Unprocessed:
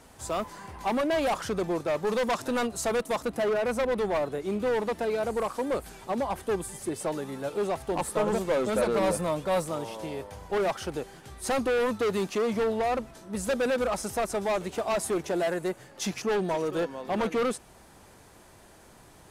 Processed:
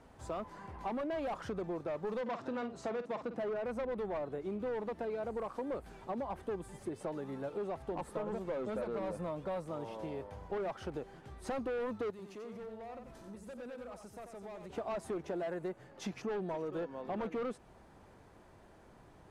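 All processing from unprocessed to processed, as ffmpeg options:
ffmpeg -i in.wav -filter_complex "[0:a]asettb=1/sr,asplit=3[link_01][link_02][link_03];[link_01]atrim=end=2.214[link_04];[link_02]atrim=start=2.21:end=3.38,asetpts=PTS-STARTPTS,afade=type=in:duration=0.004:curve=qsin,afade=type=out:start_time=1.166:duration=0.004:curve=qsin,highpass=110,lowpass=5900,asplit=2[link_05][link_06];[link_06]adelay=50,volume=-11dB[link_07];[link_05][link_07]amix=inputs=2:normalize=0,atrim=end_sample=51597[link_08];[link_03]atrim=start=3.376[link_09];[link_04][link_08]acrossfade=duration=0.004:curve1=hsin:curve2=qsin[link_10];[link_10][link_09]acrossfade=duration=0.004:curve1=qsin:curve2=hsin,asettb=1/sr,asplit=3[link_11][link_12][link_13];[link_11]atrim=end=12.104[link_14];[link_12]atrim=start=12.1:end=14.7,asetpts=PTS-STARTPTS,afade=type=in:duration=0.004:curve=qsin,afade=type=out:start_time=2.596:duration=0.004:curve=qsin,aemphasis=mode=production:type=cd,acompressor=threshold=-41dB:ratio=8:attack=3.2:release=140:knee=1:detection=peak,aecho=1:1:90:0.447,atrim=end_sample=114660[link_15];[link_13]atrim=start=14.696[link_16];[link_14][link_15]acrossfade=duration=0.004:curve1=hsin:curve2=qsin[link_17];[link_17][link_16]acrossfade=duration=0.004:curve1=qsin:curve2=hsin,lowpass=frequency=1400:poles=1,acompressor=threshold=-32dB:ratio=4,volume=-4dB" out.wav

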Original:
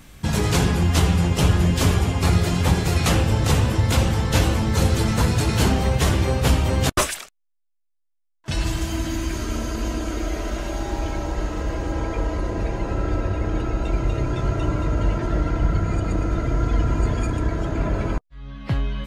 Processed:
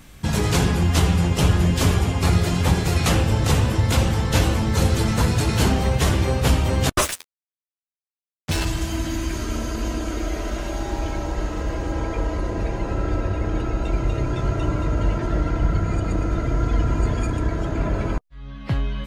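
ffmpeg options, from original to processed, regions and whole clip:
ffmpeg -i in.wav -filter_complex "[0:a]asettb=1/sr,asplit=3[link_01][link_02][link_03];[link_01]atrim=end=7.024[link_04];[link_02]atrim=start=7.02:end=8.65,asetpts=PTS-STARTPTS,afade=type=in:duration=0.004:curve=qsin,afade=type=out:start_time=1.626:duration=0.004:curve=qsin,acrusher=bits=3:mix=0:aa=0.5,asplit=2[link_05][link_06];[link_06]adelay=12,volume=-5dB[link_07];[link_05][link_07]amix=inputs=2:normalize=0,atrim=end_sample=71883[link_08];[link_03]atrim=start=8.646[link_09];[link_04][link_08]acrossfade=duration=0.004:curve1=hsin:curve2=qsin[link_10];[link_10][link_09]acrossfade=duration=0.004:curve1=qsin:curve2=hsin" out.wav

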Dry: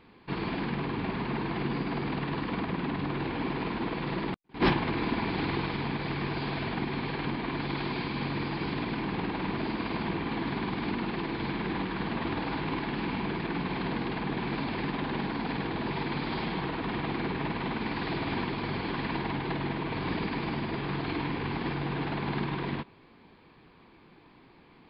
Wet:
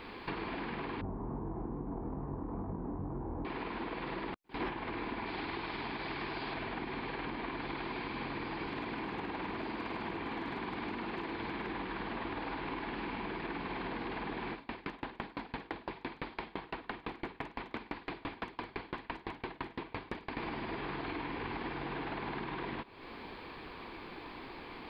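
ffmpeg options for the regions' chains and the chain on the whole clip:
ffmpeg -i in.wav -filter_complex "[0:a]asettb=1/sr,asplit=3[link_01][link_02][link_03];[link_01]atrim=end=1.014[link_04];[link_02]atrim=start=1.01:end=3.45,asetpts=PTS-STARTPTS,afade=type=in:duration=0.004:curve=qsin,afade=type=out:start_time=2.436:duration=0.004:curve=qsin,lowpass=frequency=1000:width=0.5412,lowpass=frequency=1000:width=1.3066,equalizer=frequency=73:width=0.46:gain=14,flanger=delay=19.5:depth=5.6:speed=2.4[link_05];[link_03]atrim=start=3.446[link_06];[link_04][link_05]acrossfade=duration=0.004:curve1=hsin:curve2=qsin[link_07];[link_07][link_06]acrossfade=duration=0.004:curve1=qsin:curve2=hsin,asettb=1/sr,asplit=3[link_08][link_09][link_10];[link_08]atrim=end=5.264[link_11];[link_09]atrim=start=5.26:end=6.54,asetpts=PTS-STARTPTS,afade=type=in:duration=0.004:curve=qsin,afade=type=out:start_time=1.276:duration=0.004:curve=qsin,bass=frequency=250:gain=-3,treble=frequency=4000:gain=11,bandreject=frequency=490:width=11[link_12];[link_10]atrim=start=6.536[link_13];[link_11][link_12]acrossfade=duration=0.004:curve1=hsin:curve2=qsin[link_14];[link_14][link_13]acrossfade=duration=0.004:curve1=qsin:curve2=hsin,asettb=1/sr,asplit=3[link_15][link_16][link_17];[link_15]atrim=end=8.674[link_18];[link_16]atrim=start=8.67:end=11.67,asetpts=PTS-STARTPTS,afade=type=in:duration=0.004:curve=qsin,afade=type=out:start_time=2.996:duration=0.004:curve=qsin,highpass=frequency=45:width=0.5412,highpass=frequency=45:width=1.3066,asoftclip=type=hard:threshold=-23.5dB[link_19];[link_17]atrim=start=11.666[link_20];[link_18][link_19]acrossfade=duration=0.004:curve1=hsin:curve2=qsin[link_21];[link_21][link_20]acrossfade=duration=0.004:curve1=qsin:curve2=hsin,asettb=1/sr,asplit=3[link_22][link_23][link_24];[link_22]atrim=end=14.524[link_25];[link_23]atrim=start=14.52:end=20.37,asetpts=PTS-STARTPTS,afade=type=in:duration=0.004:curve=qsin,afade=type=out:start_time=5.846:duration=0.004:curve=qsin,acrossover=split=3700[link_26][link_27];[link_27]acompressor=threshold=-54dB:ratio=4:attack=1:release=60[link_28];[link_26][link_28]amix=inputs=2:normalize=0,aeval=exprs='0.0794*(abs(mod(val(0)/0.0794+3,4)-2)-1)':channel_layout=same,aeval=exprs='val(0)*pow(10,-34*if(lt(mod(5.9*n/s,1),2*abs(5.9)/1000),1-mod(5.9*n/s,1)/(2*abs(5.9)/1000),(mod(5.9*n/s,1)-2*abs(5.9)/1000)/(1-2*abs(5.9)/1000))/20)':channel_layout=same[link_29];[link_24]atrim=start=20.366[link_30];[link_25][link_29]acrossfade=duration=0.004:curve1=hsin:curve2=qsin[link_31];[link_31][link_30]acrossfade=duration=0.004:curve1=qsin:curve2=hsin,acrossover=split=3100[link_32][link_33];[link_33]acompressor=threshold=-54dB:ratio=4:attack=1:release=60[link_34];[link_32][link_34]amix=inputs=2:normalize=0,equalizer=frequency=150:width_type=o:width=1.4:gain=-10.5,acompressor=threshold=-50dB:ratio=6,volume=12dB" out.wav

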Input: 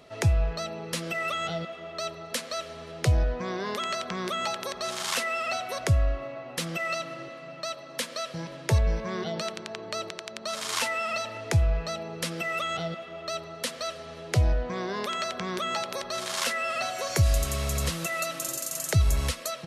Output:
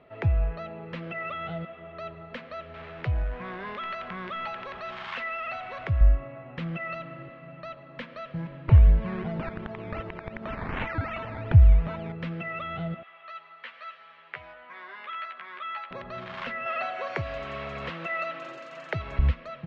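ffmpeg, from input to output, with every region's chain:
ffmpeg -i in.wav -filter_complex "[0:a]asettb=1/sr,asplit=3[link_01][link_02][link_03];[link_01]atrim=end=2.744[link_04];[link_02]atrim=start=2.74:end=6.01,asetpts=PTS-STARTPTS,afade=type=in:duration=0.004:curve=qsin,afade=type=out:start_time=3.266:duration=0.004:curve=qsin,aeval=exprs='val(0)+0.5*0.0266*sgn(val(0))':channel_layout=same,lowshelf=frequency=460:gain=-12[link_05];[link_03]atrim=start=6.006[link_06];[link_04][link_05]acrossfade=duration=0.004:curve1=hsin:curve2=qsin[link_07];[link_07][link_06]acrossfade=duration=0.004:curve1=qsin:curve2=hsin,asettb=1/sr,asplit=3[link_08][link_09][link_10];[link_08]atrim=end=8.684[link_11];[link_09]atrim=start=8.68:end=12.12,asetpts=PTS-STARTPTS,afade=type=in:duration=0.004:curve=qsin,afade=type=out:start_time=3.436:duration=0.004:curve=qsin,acrusher=samples=12:mix=1:aa=0.000001:lfo=1:lforange=7.2:lforate=2.7,acompressor=mode=upward:threshold=-26dB:ratio=2.5:attack=3.2:release=140:knee=2.83:detection=peak[link_12];[link_10]atrim=start=12.116[link_13];[link_11][link_12]acrossfade=duration=0.004:curve1=hsin:curve2=qsin[link_14];[link_14][link_13]acrossfade=duration=0.004:curve1=qsin:curve2=hsin,asettb=1/sr,asplit=3[link_15][link_16][link_17];[link_15]atrim=end=13.034[link_18];[link_16]atrim=start=13.03:end=15.91,asetpts=PTS-STARTPTS,afade=type=in:duration=0.004:curve=qsin,afade=type=out:start_time=2.876:duration=0.004:curve=qsin,highpass=1200,acrossover=split=3500[link_19][link_20];[link_20]acompressor=threshold=-45dB:ratio=4:attack=1:release=60[link_21];[link_19][link_21]amix=inputs=2:normalize=0,asplit=2[link_22][link_23];[link_23]adelay=13,volume=-2.5dB[link_24];[link_22][link_24]amix=inputs=2:normalize=0,atrim=end_sample=127008[link_25];[link_17]atrim=start=15.906[link_26];[link_18][link_25]acrossfade=duration=0.004:curve1=hsin:curve2=qsin[link_27];[link_27][link_26]acrossfade=duration=0.004:curve1=qsin:curve2=hsin,asettb=1/sr,asplit=3[link_28][link_29][link_30];[link_28]atrim=end=16.664[link_31];[link_29]atrim=start=16.66:end=19.19,asetpts=PTS-STARTPTS,afade=type=in:duration=0.004:curve=qsin,afade=type=out:start_time=2.526:duration=0.004:curve=qsin,highpass=410,acontrast=24[link_32];[link_30]atrim=start=19.186[link_33];[link_31][link_32]acrossfade=duration=0.004:curve1=hsin:curve2=qsin[link_34];[link_34][link_33]acrossfade=duration=0.004:curve1=qsin:curve2=hsin,lowpass=frequency=2600:width=0.5412,lowpass=frequency=2600:width=1.3066,asubboost=boost=3.5:cutoff=200,volume=-3dB" out.wav

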